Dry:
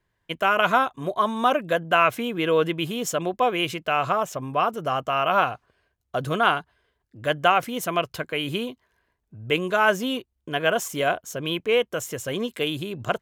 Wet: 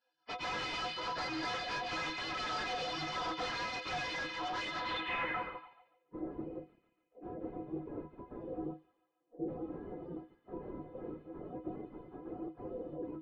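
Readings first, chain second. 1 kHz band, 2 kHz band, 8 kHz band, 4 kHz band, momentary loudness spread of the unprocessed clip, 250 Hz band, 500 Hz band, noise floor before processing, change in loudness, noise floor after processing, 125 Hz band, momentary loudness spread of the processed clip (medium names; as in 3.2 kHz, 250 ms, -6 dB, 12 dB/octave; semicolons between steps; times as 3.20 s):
-16.5 dB, -14.5 dB, -18.5 dB, -11.5 dB, 10 LU, -13.0 dB, -19.5 dB, -76 dBFS, -15.5 dB, -79 dBFS, -16.5 dB, 12 LU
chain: frequency axis rescaled in octaves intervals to 110%; peaking EQ 230 Hz -7.5 dB 0.35 oct; gate -43 dBFS, range -8 dB; spectral gate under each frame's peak -25 dB weak; tape spacing loss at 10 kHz 30 dB; band-stop 4 kHz, Q 28; inharmonic resonator 150 Hz, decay 0.22 s, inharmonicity 0.03; on a send: feedback echo behind a high-pass 143 ms, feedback 58%, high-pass 2.5 kHz, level -12 dB; on the sum: overdrive pedal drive 36 dB, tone 1 kHz, clips at -40.5 dBFS; low-pass sweep 5.4 kHz -> 370 Hz, 4.74–6.14 s; trim +14 dB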